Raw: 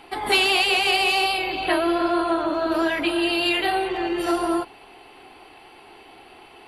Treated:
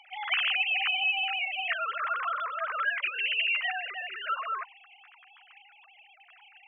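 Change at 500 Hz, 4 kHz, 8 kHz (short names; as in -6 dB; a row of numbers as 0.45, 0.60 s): -22.0 dB, -7.5 dB, under -40 dB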